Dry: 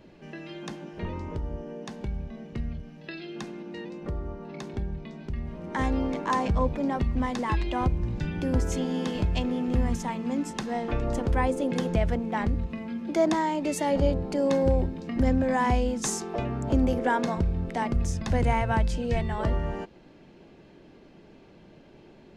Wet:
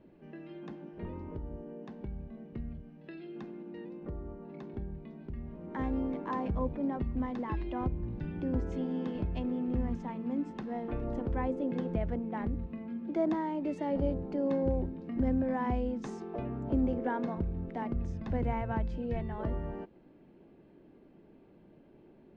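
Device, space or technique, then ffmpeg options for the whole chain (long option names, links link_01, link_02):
phone in a pocket: -af "lowpass=3500,equalizer=frequency=290:width_type=o:width=1.4:gain=5,highshelf=frequency=2100:gain=-8,volume=-9dB"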